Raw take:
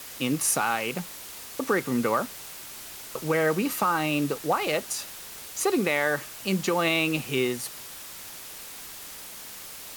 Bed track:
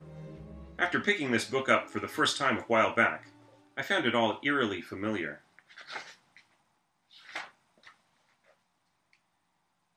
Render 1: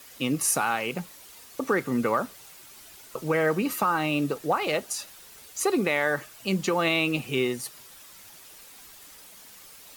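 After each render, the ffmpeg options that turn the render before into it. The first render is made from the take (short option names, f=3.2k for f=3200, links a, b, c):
-af "afftdn=nr=9:nf=-42"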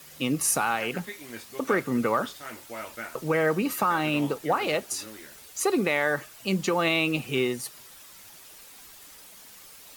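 -filter_complex "[1:a]volume=-13dB[a];[0:a][a]amix=inputs=2:normalize=0"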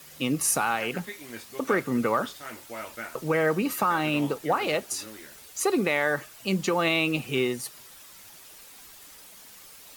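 -af anull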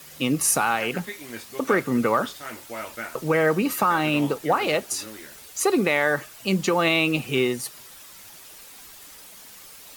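-af "volume=3.5dB"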